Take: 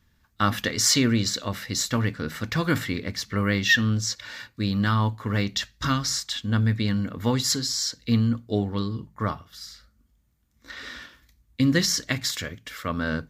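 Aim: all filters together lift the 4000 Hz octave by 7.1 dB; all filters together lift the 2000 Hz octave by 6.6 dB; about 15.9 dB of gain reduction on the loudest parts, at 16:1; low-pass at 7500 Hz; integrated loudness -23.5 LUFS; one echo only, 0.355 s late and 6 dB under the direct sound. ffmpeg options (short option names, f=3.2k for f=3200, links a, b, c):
-af "lowpass=7.5k,equalizer=f=2k:t=o:g=6,equalizer=f=4k:t=o:g=8,acompressor=threshold=-23dB:ratio=16,aecho=1:1:355:0.501,volume=3.5dB"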